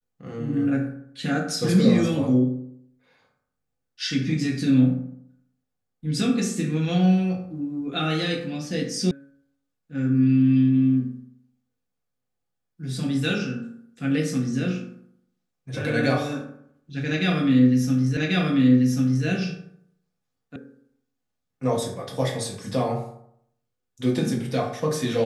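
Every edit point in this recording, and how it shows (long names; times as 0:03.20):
0:09.11: cut off before it has died away
0:18.17: the same again, the last 1.09 s
0:20.56: cut off before it has died away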